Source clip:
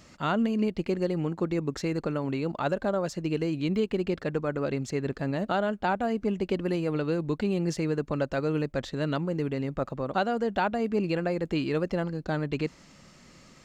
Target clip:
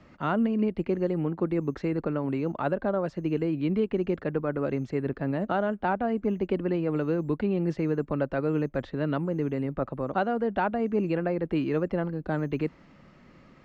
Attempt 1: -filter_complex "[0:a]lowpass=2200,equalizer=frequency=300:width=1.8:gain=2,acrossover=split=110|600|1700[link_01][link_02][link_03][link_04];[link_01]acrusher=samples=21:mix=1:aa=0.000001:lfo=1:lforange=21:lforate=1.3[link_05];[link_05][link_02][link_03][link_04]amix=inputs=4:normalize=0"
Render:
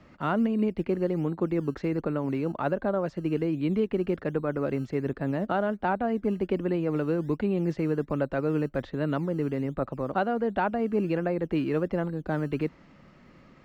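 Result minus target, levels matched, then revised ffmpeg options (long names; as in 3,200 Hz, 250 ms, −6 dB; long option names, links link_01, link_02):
sample-and-hold swept by an LFO: distortion +14 dB
-filter_complex "[0:a]lowpass=2200,equalizer=frequency=300:width=1.8:gain=2,acrossover=split=110|600|1700[link_01][link_02][link_03][link_04];[link_01]acrusher=samples=5:mix=1:aa=0.000001:lfo=1:lforange=5:lforate=1.3[link_05];[link_05][link_02][link_03][link_04]amix=inputs=4:normalize=0"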